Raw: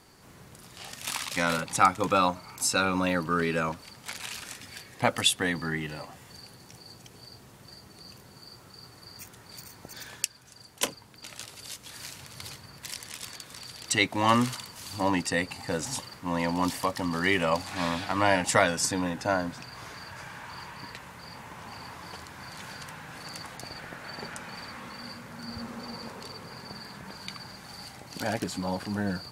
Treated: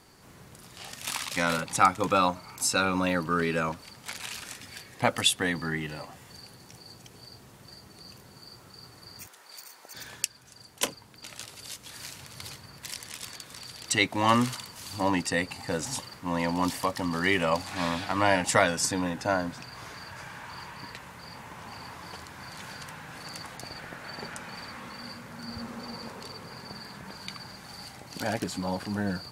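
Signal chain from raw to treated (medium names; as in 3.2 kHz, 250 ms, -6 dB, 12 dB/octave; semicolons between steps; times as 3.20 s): 9.27–9.95 s: high-pass 570 Hz 12 dB/octave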